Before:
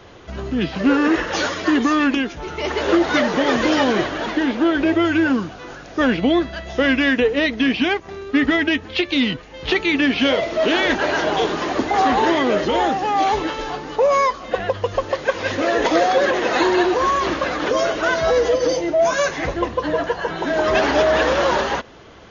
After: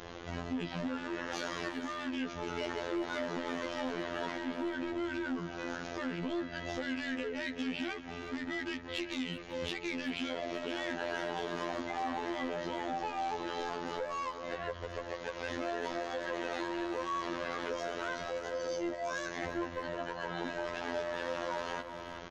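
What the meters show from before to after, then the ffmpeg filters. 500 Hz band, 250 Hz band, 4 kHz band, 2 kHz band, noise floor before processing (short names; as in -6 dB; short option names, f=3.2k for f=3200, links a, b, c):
-19.0 dB, -18.5 dB, -18.0 dB, -18.0 dB, -38 dBFS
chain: -filter_complex "[0:a]equalizer=f=74:w=1.6:g=-7,acompressor=threshold=-30dB:ratio=8,aresample=16000,asoftclip=type=hard:threshold=-31dB,aresample=44100,afftfilt=real='hypot(re,im)*cos(PI*b)':imag='0':win_size=2048:overlap=0.75,asplit=2[a][b];[b]adelay=380,highpass=300,lowpass=3.4k,asoftclip=type=hard:threshold=-26dB,volume=-10dB[c];[a][c]amix=inputs=2:normalize=0,asoftclip=type=tanh:threshold=-18.5dB,asplit=2[d][e];[e]adelay=496,lowpass=f=2k:p=1,volume=-21dB,asplit=2[f][g];[g]adelay=496,lowpass=f=2k:p=1,volume=0.47,asplit=2[h][i];[i]adelay=496,lowpass=f=2k:p=1,volume=0.47[j];[f][h][j]amix=inputs=3:normalize=0[k];[d][k]amix=inputs=2:normalize=0,aeval=exprs='val(0)+0.000708*(sin(2*PI*60*n/s)+sin(2*PI*2*60*n/s)/2+sin(2*PI*3*60*n/s)/3+sin(2*PI*4*60*n/s)/4+sin(2*PI*5*60*n/s)/5)':c=same,volume=1dB"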